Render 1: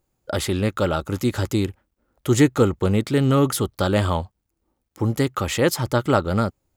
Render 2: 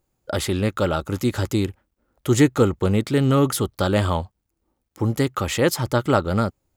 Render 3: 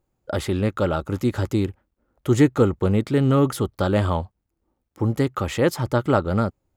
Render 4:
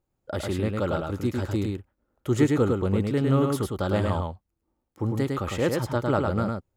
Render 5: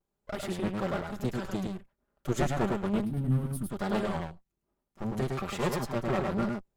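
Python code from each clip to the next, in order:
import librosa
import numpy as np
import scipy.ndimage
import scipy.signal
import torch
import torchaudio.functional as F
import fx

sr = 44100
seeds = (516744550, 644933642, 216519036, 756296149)

y1 = x
y2 = fx.high_shelf(y1, sr, hz=2600.0, db=-8.5)
y3 = y2 + 10.0 ** (-3.5 / 20.0) * np.pad(y2, (int(105 * sr / 1000.0), 0))[:len(y2)]
y3 = y3 * 10.0 ** (-5.5 / 20.0)
y4 = fx.lower_of_two(y3, sr, delay_ms=5.1)
y4 = fx.spec_box(y4, sr, start_s=3.05, length_s=0.65, low_hz=330.0, high_hz=8400.0, gain_db=-15)
y4 = fx.vibrato(y4, sr, rate_hz=1.1, depth_cents=71.0)
y4 = y4 * 10.0 ** (-3.0 / 20.0)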